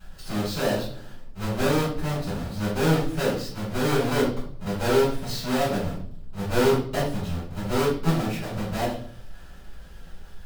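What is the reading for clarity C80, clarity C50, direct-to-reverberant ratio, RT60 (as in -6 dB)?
8.0 dB, 3.5 dB, -11.0 dB, 0.55 s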